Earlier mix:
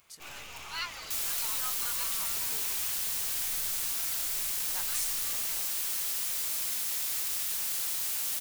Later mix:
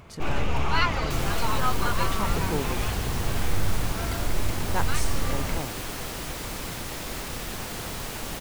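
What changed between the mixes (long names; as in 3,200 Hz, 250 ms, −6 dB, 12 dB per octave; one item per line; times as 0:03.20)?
second sound −5.0 dB
master: remove first-order pre-emphasis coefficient 0.97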